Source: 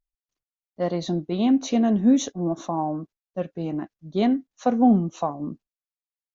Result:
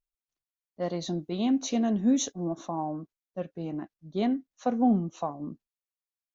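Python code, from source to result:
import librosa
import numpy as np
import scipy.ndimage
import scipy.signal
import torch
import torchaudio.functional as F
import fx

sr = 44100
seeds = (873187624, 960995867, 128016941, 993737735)

y = fx.high_shelf(x, sr, hz=fx.line((0.82, 5800.0), (2.45, 4600.0)), db=10.5, at=(0.82, 2.45), fade=0.02)
y = y * librosa.db_to_amplitude(-6.0)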